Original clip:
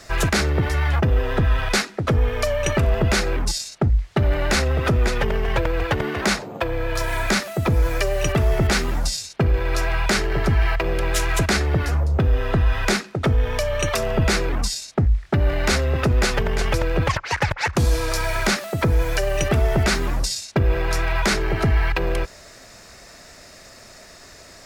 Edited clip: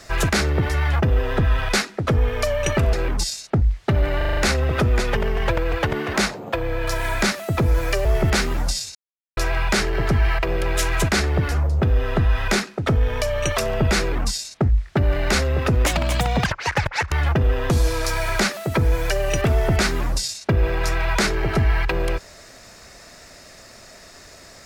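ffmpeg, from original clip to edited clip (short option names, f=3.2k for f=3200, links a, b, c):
-filter_complex "[0:a]asplit=14[a][b][c][d][e][f][g][h][i][j][k][l][m][n];[a]atrim=end=2.932[o];[b]atrim=start=3.208:end=4.492[p];[c]atrim=start=4.448:end=4.492[q];[d]atrim=start=4.448:end=4.492[r];[e]atrim=start=4.448:end=4.492[s];[f]atrim=start=4.448:end=4.492[t];[g]atrim=start=4.448:end=8.132[u];[h]atrim=start=8.418:end=9.32,asetpts=PTS-STARTPTS,afade=t=out:st=0.898:d=0.004:c=hsin[v];[i]atrim=start=9.32:end=9.74,asetpts=PTS-STARTPTS,volume=0[w];[j]atrim=start=9.74:end=16.234,asetpts=PTS-STARTPTS,afade=t=in:d=0.004:c=hsin[x];[k]atrim=start=16.23:end=17.11,asetpts=PTS-STARTPTS,asetrate=64827,aresample=44100[y];[l]atrim=start=17.106:end=17.772[z];[m]atrim=start=0.788:end=1.372[aa];[n]atrim=start=17.768[ab];[o][p]acrossfade=d=0.004:c1=hsin:c2=hsin[ac];[ac][q]acrossfade=d=0.004:c1=hsin:c2=hsin[ad];[ad][r]acrossfade=d=0.004:c1=hsin:c2=hsin[ae];[ae][s]acrossfade=d=0.004:c1=hsin:c2=hsin[af];[af][t]acrossfade=d=0.004:c1=hsin:c2=hsin[ag];[ag][u]acrossfade=d=0.004:c1=hsin:c2=hsin[ah];[v][w][x]concat=n=3:v=0:a=1[ai];[ah][ai]acrossfade=d=0.004:c1=hsin:c2=hsin[aj];[aj][y]acrossfade=d=0.004:c1=hsin:c2=hsin[ak];[ak][z]acrossfade=d=0.004:c1=hsin:c2=hsin[al];[al][aa]acrossfade=d=0.004:c1=hsin:c2=hsin[am];[am][ab]acrossfade=d=0.004:c1=hsin:c2=hsin"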